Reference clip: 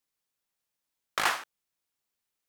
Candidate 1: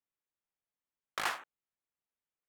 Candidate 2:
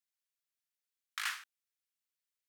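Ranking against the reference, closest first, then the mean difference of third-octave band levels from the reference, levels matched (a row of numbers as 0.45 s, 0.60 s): 1, 2; 1.5 dB, 10.5 dB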